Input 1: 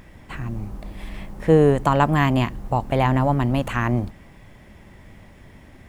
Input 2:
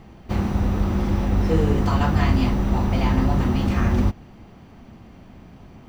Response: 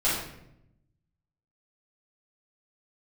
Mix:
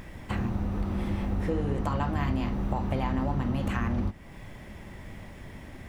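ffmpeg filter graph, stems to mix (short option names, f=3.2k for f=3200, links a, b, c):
-filter_complex "[0:a]acompressor=threshold=-23dB:ratio=6,volume=2.5dB,asplit=2[a][b];[1:a]aemphasis=mode=reproduction:type=50fm,volume=-2dB[c];[b]apad=whole_len=259562[d];[c][d]sidechaingate=range=-33dB:threshold=-37dB:ratio=16:detection=peak[e];[a][e]amix=inputs=2:normalize=0,acompressor=threshold=-32dB:ratio=2"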